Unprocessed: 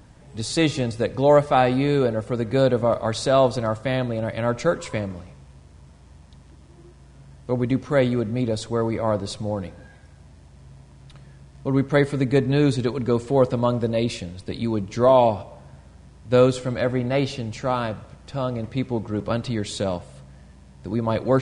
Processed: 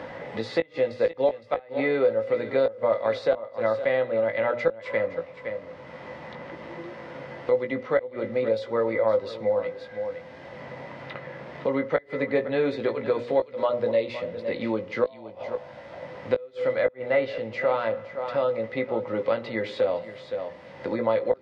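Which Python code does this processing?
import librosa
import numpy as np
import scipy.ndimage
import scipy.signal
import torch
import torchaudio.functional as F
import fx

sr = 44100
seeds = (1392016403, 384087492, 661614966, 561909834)

y = fx.highpass(x, sr, hz=200.0, slope=6)
y = fx.low_shelf(y, sr, hz=490.0, db=-11.5)
y = fx.hum_notches(y, sr, base_hz=60, count=10)
y = fx.small_body(y, sr, hz=(520.0, 2000.0), ring_ms=50, db=15)
y = fx.gate_flip(y, sr, shuts_db=-8.0, range_db=-32)
y = fx.air_absorb(y, sr, metres=310.0)
y = fx.doubler(y, sr, ms=18.0, db=-7.0)
y = y + 10.0 ** (-15.0 / 20.0) * np.pad(y, (int(513 * sr / 1000.0), 0))[:len(y)]
y = fx.band_squash(y, sr, depth_pct=70)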